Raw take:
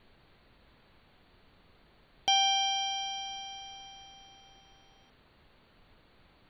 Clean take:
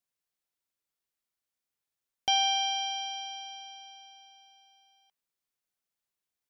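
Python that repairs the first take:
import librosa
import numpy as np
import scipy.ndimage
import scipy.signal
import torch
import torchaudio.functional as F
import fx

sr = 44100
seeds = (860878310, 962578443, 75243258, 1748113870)

y = fx.noise_reduce(x, sr, print_start_s=5.22, print_end_s=5.72, reduce_db=26.0)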